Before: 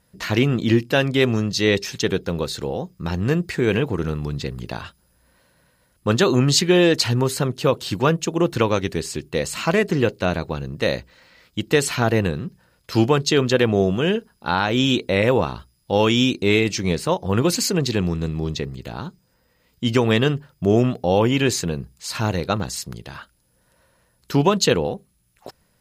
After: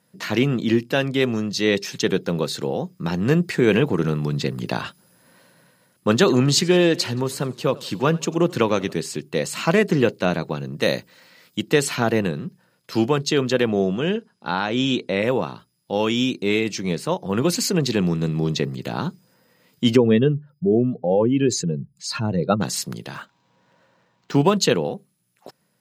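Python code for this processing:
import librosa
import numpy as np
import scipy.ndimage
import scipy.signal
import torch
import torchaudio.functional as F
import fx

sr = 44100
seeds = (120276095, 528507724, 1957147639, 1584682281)

y = fx.echo_warbled(x, sr, ms=90, feedback_pct=60, rate_hz=2.8, cents=146, wet_db=-23.0, at=(6.13, 8.93))
y = fx.high_shelf(y, sr, hz=7500.0, db=10.5, at=(10.81, 11.61))
y = fx.lowpass(y, sr, hz=8100.0, slope=12, at=(13.71, 15.2))
y = fx.spec_expand(y, sr, power=1.8, at=(19.95, 22.6), fade=0.02)
y = fx.resample_linear(y, sr, factor=4, at=(23.15, 24.51))
y = scipy.signal.sosfilt(scipy.signal.butter(4, 140.0, 'highpass', fs=sr, output='sos'), y)
y = fx.low_shelf(y, sr, hz=210.0, db=4.0)
y = fx.rider(y, sr, range_db=10, speed_s=2.0)
y = y * librosa.db_to_amplitude(-2.5)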